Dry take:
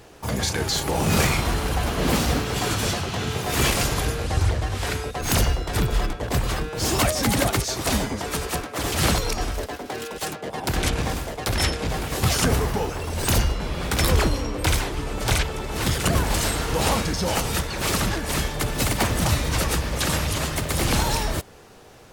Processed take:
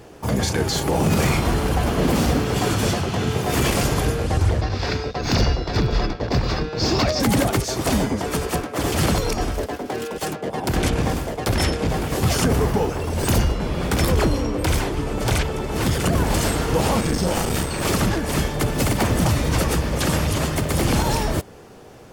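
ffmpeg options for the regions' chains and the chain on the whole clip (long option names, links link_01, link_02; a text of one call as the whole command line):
ffmpeg -i in.wav -filter_complex "[0:a]asettb=1/sr,asplit=3[link_01][link_02][link_03];[link_01]atrim=end=4.614[link_04];[link_02]atrim=start=4.61:end=7.2,asetpts=PTS-STARTPTS,afade=type=in:duration=0.004:curve=qsin,afade=type=out:start_time=2.586:duration=0.004:curve=qsin,bandreject=frequency=3100:width=9,aeval=exprs='sgn(val(0))*max(abs(val(0))-0.00708,0)':channel_layout=same,highshelf=frequency=6900:width_type=q:width=3:gain=-13.5[link_05];[link_03]atrim=start=7.196[link_06];[link_04][link_05]acrossfade=duration=0.004:curve1=hsin:curve2=qsin[link_07];[link_07][link_06]acrossfade=duration=0.004:curve1=qsin:curve2=hsin,asettb=1/sr,asplit=3[link_08][link_09][link_10];[link_08]atrim=end=17.004[link_11];[link_09]atrim=start=17:end=17.85,asetpts=PTS-STARTPTS,afade=type=in:duration=0.004:curve=qsin,afade=type=out:start_time=0.846:duration=0.004:curve=qsin,asplit=2[link_12][link_13];[link_13]adelay=39,volume=-3dB[link_14];[link_12][link_14]amix=inputs=2:normalize=0,atrim=end_sample=37485,aeval=exprs='val(0)+0.0178*sin(2*PI*8200*n/s)':channel_layout=same,aeval=exprs='clip(val(0),-1,0.0422)':channel_layout=same[link_15];[link_10]atrim=start=17.846[link_16];[link_11][link_15]acrossfade=duration=0.004:curve1=hsin:curve2=qsin[link_17];[link_17][link_16]acrossfade=duration=0.004:curve1=qsin:curve2=hsin,equalizer=frequency=240:width=0.31:gain=7,bandreject=frequency=3900:width=22,alimiter=level_in=8dB:limit=-1dB:release=50:level=0:latency=1,volume=-8.5dB" out.wav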